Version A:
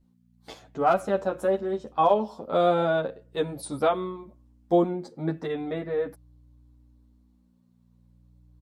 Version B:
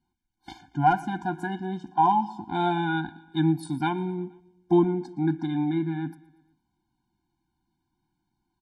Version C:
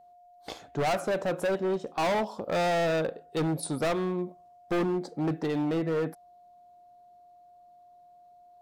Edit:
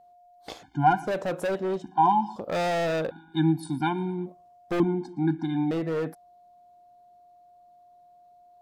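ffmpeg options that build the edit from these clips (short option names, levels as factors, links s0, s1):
-filter_complex "[1:a]asplit=4[s0][s1][s2][s3];[2:a]asplit=5[s4][s5][s6][s7][s8];[s4]atrim=end=0.632[s9];[s0]atrim=start=0.628:end=1.072[s10];[s5]atrim=start=1.068:end=1.822[s11];[s1]atrim=start=1.818:end=2.362[s12];[s6]atrim=start=2.358:end=3.112[s13];[s2]atrim=start=3.108:end=4.262[s14];[s7]atrim=start=4.258:end=4.802[s15];[s3]atrim=start=4.798:end=5.712[s16];[s8]atrim=start=5.708[s17];[s9][s10]acrossfade=d=0.004:c1=hsin:c2=hsin[s18];[s18][s11]acrossfade=d=0.004:c1=hsin:c2=hsin[s19];[s19][s12]acrossfade=d=0.004:c1=hsin:c2=hsin[s20];[s20][s13]acrossfade=d=0.004:c1=hsin:c2=hsin[s21];[s21][s14]acrossfade=d=0.004:c1=hsin:c2=hsin[s22];[s22][s15]acrossfade=d=0.004:c1=hsin:c2=hsin[s23];[s23][s16]acrossfade=d=0.004:c1=hsin:c2=hsin[s24];[s24][s17]acrossfade=d=0.004:c1=hsin:c2=hsin"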